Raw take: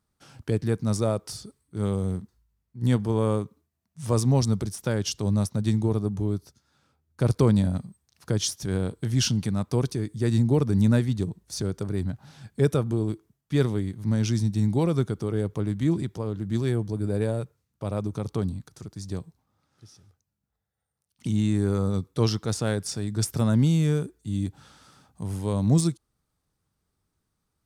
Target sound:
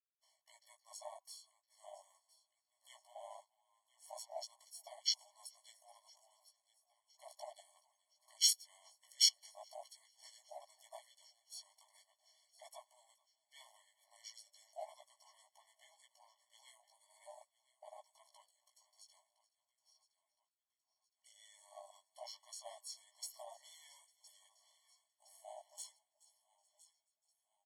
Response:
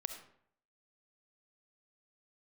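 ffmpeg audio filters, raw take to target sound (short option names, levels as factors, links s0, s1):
-filter_complex "[0:a]agate=range=0.0224:threshold=0.00355:ratio=3:detection=peak,bass=f=250:g=5,treble=f=4000:g=11,asplit=2[s0][s1];[s1]aecho=0:1:1014|2028|3042|4056:0.133|0.0653|0.032|0.0157[s2];[s0][s2]amix=inputs=2:normalize=0,acontrast=41,flanger=delay=15:depth=2.9:speed=0.39,asplit=2[s3][s4];[s4]asplit=3[s5][s6][s7];[s5]adelay=426,afreqshift=37,volume=0.0891[s8];[s6]adelay=852,afreqshift=74,volume=0.032[s9];[s7]adelay=1278,afreqshift=111,volume=0.0116[s10];[s8][s9][s10]amix=inputs=3:normalize=0[s11];[s3][s11]amix=inputs=2:normalize=0,afreqshift=-180,asplit=3[s12][s13][s14];[s13]asetrate=35002,aresample=44100,atempo=1.25992,volume=0.355[s15];[s14]asetrate=55563,aresample=44100,atempo=0.793701,volume=0.141[s16];[s12][s15][s16]amix=inputs=3:normalize=0,afwtdn=0.0708,afftfilt=real='re*eq(mod(floor(b*sr/1024/580),2),1)':imag='im*eq(mod(floor(b*sr/1024/580),2),1)':win_size=1024:overlap=0.75,volume=0.376"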